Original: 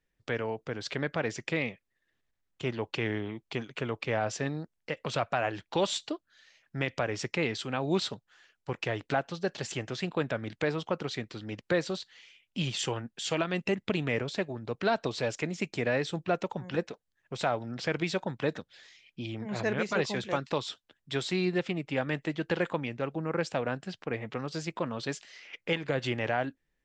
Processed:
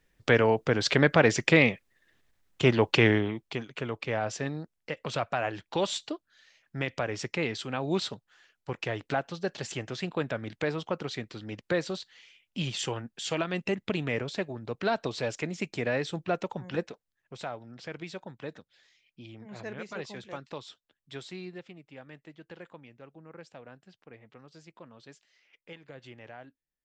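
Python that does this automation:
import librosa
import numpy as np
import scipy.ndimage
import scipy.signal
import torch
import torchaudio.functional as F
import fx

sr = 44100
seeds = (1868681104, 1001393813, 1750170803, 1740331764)

y = fx.gain(x, sr, db=fx.line((3.05, 10.5), (3.6, -0.5), (16.81, -0.5), (17.59, -9.5), (21.17, -9.5), (21.83, -17.0)))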